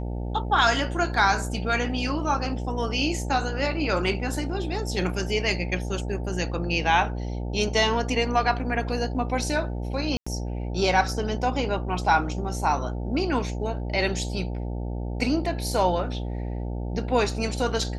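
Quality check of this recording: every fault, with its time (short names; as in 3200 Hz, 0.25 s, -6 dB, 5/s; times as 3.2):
buzz 60 Hz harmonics 15 -30 dBFS
1.14 gap 2.1 ms
10.17–10.27 gap 95 ms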